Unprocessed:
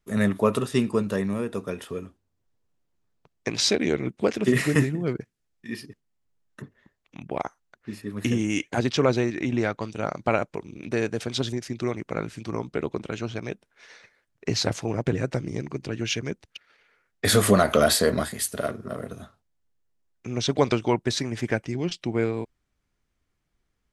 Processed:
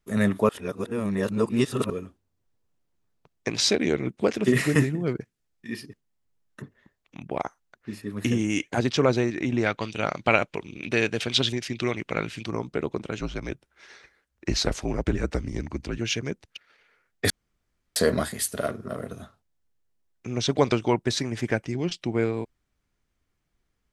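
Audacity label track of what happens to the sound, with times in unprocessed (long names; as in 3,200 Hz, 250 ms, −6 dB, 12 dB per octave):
0.490000	1.900000	reverse
9.660000	12.460000	parametric band 2,900 Hz +11.5 dB 1.3 octaves
13.200000	15.980000	frequency shifter −64 Hz
17.300000	17.960000	fill with room tone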